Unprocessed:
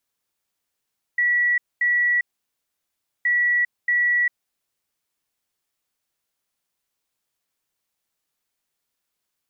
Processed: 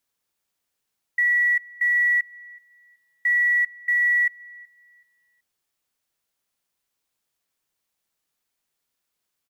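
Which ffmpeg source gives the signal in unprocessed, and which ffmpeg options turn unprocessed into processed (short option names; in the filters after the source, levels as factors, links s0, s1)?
-f lavfi -i "aevalsrc='0.15*sin(2*PI*1940*t)*clip(min(mod(mod(t,2.07),0.63),0.4-mod(mod(t,2.07),0.63))/0.005,0,1)*lt(mod(t,2.07),1.26)':d=4.14:s=44100"
-filter_complex "[0:a]acrusher=bits=9:mode=log:mix=0:aa=0.000001,asplit=2[s0][s1];[s1]adelay=376,lowpass=f=1900:p=1,volume=0.0891,asplit=2[s2][s3];[s3]adelay=376,lowpass=f=1900:p=1,volume=0.36,asplit=2[s4][s5];[s5]adelay=376,lowpass=f=1900:p=1,volume=0.36[s6];[s0][s2][s4][s6]amix=inputs=4:normalize=0"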